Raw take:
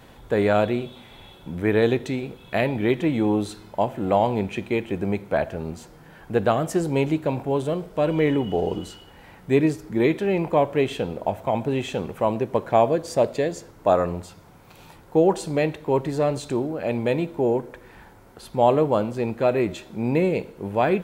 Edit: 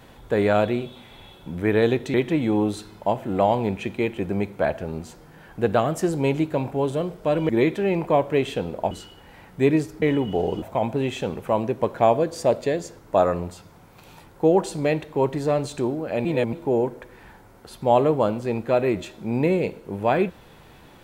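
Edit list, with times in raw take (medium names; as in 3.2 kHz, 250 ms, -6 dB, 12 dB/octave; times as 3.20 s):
2.14–2.86 s: delete
8.21–8.81 s: swap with 9.92–11.34 s
16.97–17.25 s: reverse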